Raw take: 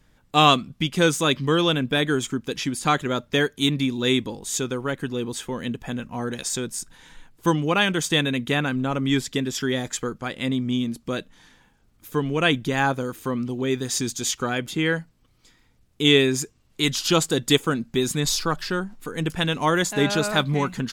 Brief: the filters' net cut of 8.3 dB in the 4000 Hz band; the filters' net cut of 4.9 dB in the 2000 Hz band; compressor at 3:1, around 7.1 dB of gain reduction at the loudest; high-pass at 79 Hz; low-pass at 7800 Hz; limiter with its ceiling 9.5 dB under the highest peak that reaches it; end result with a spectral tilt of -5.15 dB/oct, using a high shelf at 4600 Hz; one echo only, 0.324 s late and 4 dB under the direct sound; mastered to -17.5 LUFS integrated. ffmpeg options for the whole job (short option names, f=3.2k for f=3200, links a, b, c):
-af "highpass=79,lowpass=7.8k,equalizer=f=2k:t=o:g=-4,equalizer=f=4k:t=o:g=-6.5,highshelf=f=4.6k:g=-5,acompressor=threshold=-23dB:ratio=3,alimiter=limit=-21.5dB:level=0:latency=1,aecho=1:1:324:0.631,volume=13dB"